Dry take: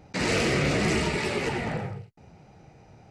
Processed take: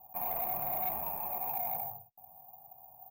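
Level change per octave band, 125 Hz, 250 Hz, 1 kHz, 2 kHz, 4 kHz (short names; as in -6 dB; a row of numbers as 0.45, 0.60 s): -24.5 dB, -26.5 dB, -3.0 dB, -25.0 dB, under -30 dB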